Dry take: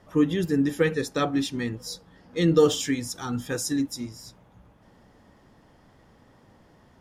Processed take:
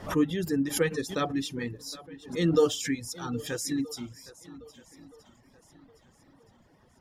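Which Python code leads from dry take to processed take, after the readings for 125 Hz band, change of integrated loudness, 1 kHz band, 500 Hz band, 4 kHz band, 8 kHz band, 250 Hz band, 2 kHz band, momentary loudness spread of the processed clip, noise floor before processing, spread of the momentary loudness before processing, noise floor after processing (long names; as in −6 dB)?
−4.5 dB, −4.0 dB, −3.0 dB, −4.0 dB, −3.0 dB, −2.0 dB, −4.0 dB, −3.0 dB, 20 LU, −58 dBFS, 15 LU, −62 dBFS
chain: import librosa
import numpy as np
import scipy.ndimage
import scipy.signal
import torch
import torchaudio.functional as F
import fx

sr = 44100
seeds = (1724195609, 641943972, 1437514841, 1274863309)

y = fx.echo_swing(x, sr, ms=1273, ratio=1.5, feedback_pct=30, wet_db=-18)
y = fx.dereverb_blind(y, sr, rt60_s=0.84)
y = fx.pre_swell(y, sr, db_per_s=140.0)
y = y * librosa.db_to_amplitude(-3.5)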